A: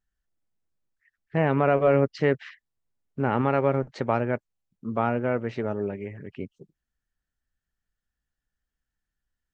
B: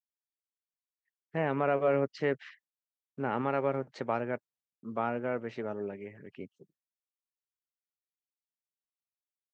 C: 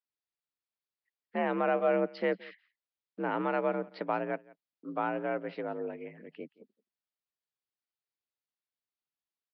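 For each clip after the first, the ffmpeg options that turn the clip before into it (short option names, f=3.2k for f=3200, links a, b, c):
-af "agate=range=-33dB:threshold=-54dB:ratio=3:detection=peak,highpass=110,lowshelf=f=170:g=-7,volume=-6dB"
-af "afreqshift=55,aecho=1:1:173:0.0708,aresample=11025,aresample=44100"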